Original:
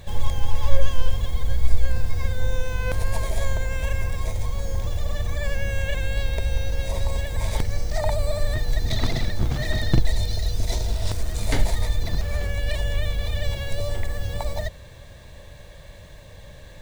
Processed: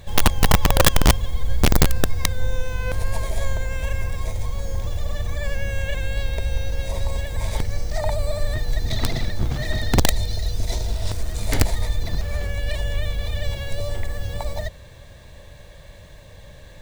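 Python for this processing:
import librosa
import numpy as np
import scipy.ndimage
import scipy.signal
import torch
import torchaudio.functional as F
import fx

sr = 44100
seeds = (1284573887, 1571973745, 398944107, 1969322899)

y = (np.mod(10.0 ** (9.0 / 20.0) * x + 1.0, 2.0) - 1.0) / 10.0 ** (9.0 / 20.0)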